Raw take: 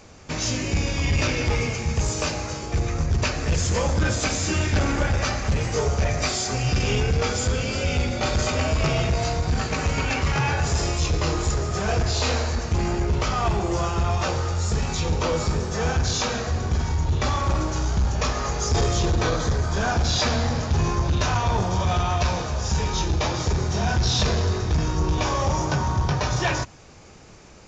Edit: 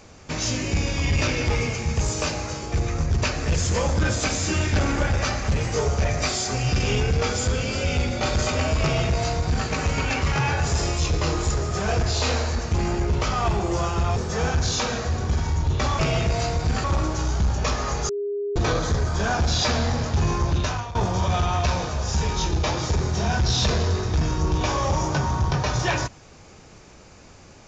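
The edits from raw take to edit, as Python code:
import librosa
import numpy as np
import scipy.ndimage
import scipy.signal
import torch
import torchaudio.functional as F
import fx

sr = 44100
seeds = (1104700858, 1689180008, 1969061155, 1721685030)

y = fx.edit(x, sr, fx.duplicate(start_s=8.82, length_s=0.85, to_s=17.41),
    fx.cut(start_s=14.16, length_s=1.42),
    fx.bleep(start_s=18.66, length_s=0.47, hz=407.0, db=-24.0),
    fx.fade_out_to(start_s=21.13, length_s=0.39, floor_db=-17.5), tone=tone)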